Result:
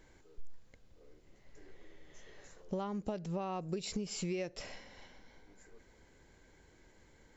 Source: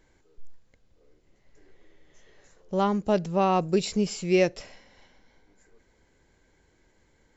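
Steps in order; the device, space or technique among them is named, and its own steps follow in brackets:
serial compression, leveller first (downward compressor 3 to 1, threshold −25 dBFS, peak gain reduction 7 dB; downward compressor 8 to 1, threshold −36 dBFS, peak gain reduction 13.5 dB)
level +1.5 dB

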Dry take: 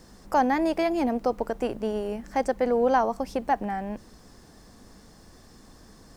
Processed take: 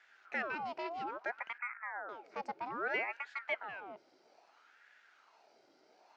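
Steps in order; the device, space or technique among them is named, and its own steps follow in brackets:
0:01.58–0:02.09: Butterworth low-pass 950 Hz 72 dB per octave
voice changer toy (ring modulator whose carrier an LFO sweeps 1,000 Hz, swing 70%, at 0.61 Hz; loudspeaker in its box 510–4,600 Hz, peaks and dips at 520 Hz −6 dB, 1,100 Hz −10 dB, 1,800 Hz −5 dB, 3,600 Hz −6 dB)
level −6.5 dB

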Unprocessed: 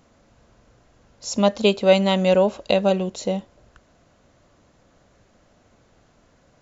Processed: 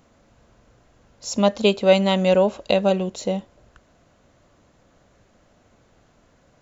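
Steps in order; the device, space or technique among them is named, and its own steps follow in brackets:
exciter from parts (in parallel at −12.5 dB: high-pass filter 4,700 Hz 24 dB per octave + soft clipping −38.5 dBFS, distortion −4 dB)

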